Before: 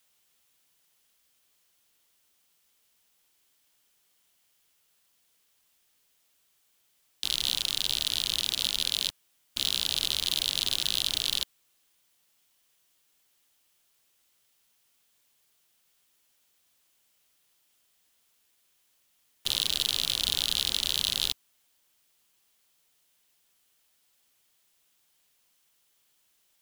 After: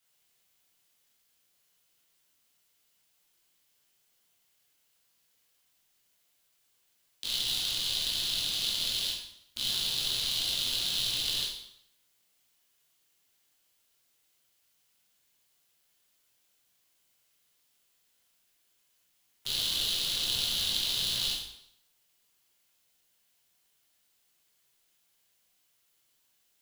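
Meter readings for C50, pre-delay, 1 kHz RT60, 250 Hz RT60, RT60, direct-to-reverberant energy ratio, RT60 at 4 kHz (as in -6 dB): 2.0 dB, 6 ms, 0.75 s, 0.70 s, 0.75 s, -5.5 dB, 0.65 s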